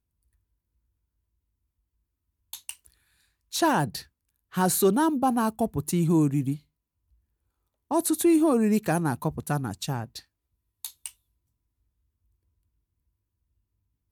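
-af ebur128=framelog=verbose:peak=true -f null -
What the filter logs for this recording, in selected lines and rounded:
Integrated loudness:
  I:         -25.0 LUFS
  Threshold: -36.5 LUFS
Loudness range:
  LRA:        21.8 LU
  Threshold: -48.1 LUFS
  LRA low:   -47.2 LUFS
  LRA high:  -25.4 LUFS
True peak:
  Peak:      -11.8 dBFS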